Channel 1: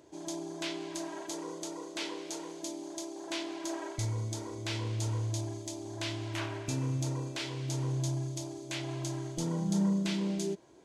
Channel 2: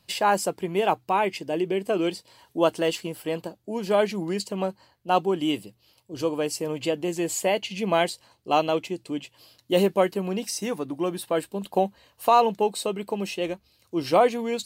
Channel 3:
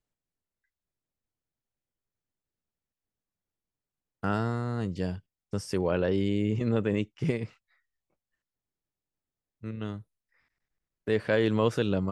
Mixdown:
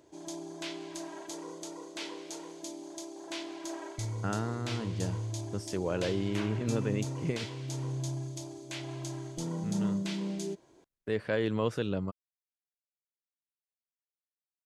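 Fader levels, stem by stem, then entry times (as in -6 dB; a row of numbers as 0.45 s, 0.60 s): -2.5 dB, mute, -5.0 dB; 0.00 s, mute, 0.00 s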